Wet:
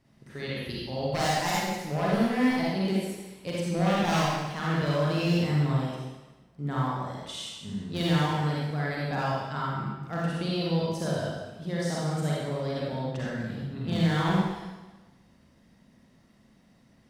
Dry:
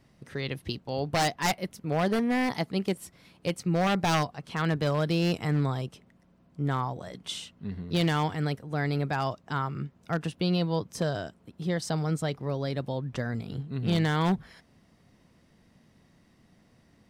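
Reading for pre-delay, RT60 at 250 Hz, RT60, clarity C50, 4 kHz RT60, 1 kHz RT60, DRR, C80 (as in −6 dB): 37 ms, 1.1 s, 1.2 s, −3.5 dB, 1.1 s, 1.2 s, −6.0 dB, 0.0 dB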